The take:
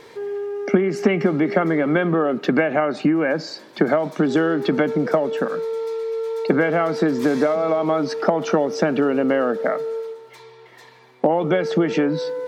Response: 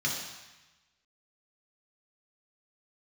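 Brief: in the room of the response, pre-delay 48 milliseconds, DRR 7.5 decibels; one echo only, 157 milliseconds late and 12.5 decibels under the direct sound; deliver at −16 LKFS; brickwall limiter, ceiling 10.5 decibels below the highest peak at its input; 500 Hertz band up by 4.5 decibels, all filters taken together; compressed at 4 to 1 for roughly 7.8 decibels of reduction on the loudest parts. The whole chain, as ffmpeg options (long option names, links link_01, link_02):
-filter_complex "[0:a]equalizer=frequency=500:width_type=o:gain=5.5,acompressor=threshold=-19dB:ratio=4,alimiter=limit=-16.5dB:level=0:latency=1,aecho=1:1:157:0.237,asplit=2[link_01][link_02];[1:a]atrim=start_sample=2205,adelay=48[link_03];[link_02][link_03]afir=irnorm=-1:irlink=0,volume=-15dB[link_04];[link_01][link_04]amix=inputs=2:normalize=0,volume=8dB"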